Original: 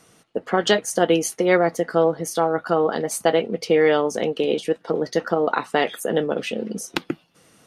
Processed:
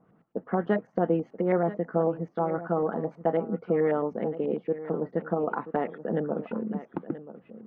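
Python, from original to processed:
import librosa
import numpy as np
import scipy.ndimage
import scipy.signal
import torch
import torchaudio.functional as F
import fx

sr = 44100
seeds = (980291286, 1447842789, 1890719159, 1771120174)

y = fx.peak_eq(x, sr, hz=190.0, db=9.0, octaves=1.1)
y = fx.filter_lfo_lowpass(y, sr, shape='saw_up', hz=9.2, low_hz=790.0, high_hz=2000.0, q=1.6)
y = fx.spacing_loss(y, sr, db_at_10k=28)
y = y + 10.0 ** (-14.0 / 20.0) * np.pad(y, (int(981 * sr / 1000.0), 0))[:len(y)]
y = y * 10.0 ** (-9.0 / 20.0)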